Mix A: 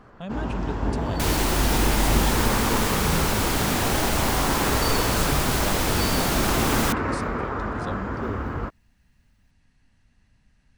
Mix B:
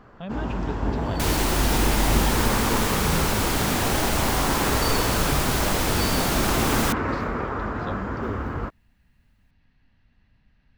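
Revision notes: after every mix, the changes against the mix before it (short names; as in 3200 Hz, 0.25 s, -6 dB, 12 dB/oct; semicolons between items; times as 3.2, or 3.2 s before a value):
speech: add LPF 4300 Hz 24 dB/oct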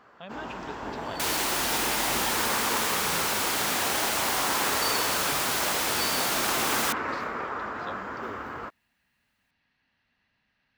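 master: add HPF 870 Hz 6 dB/oct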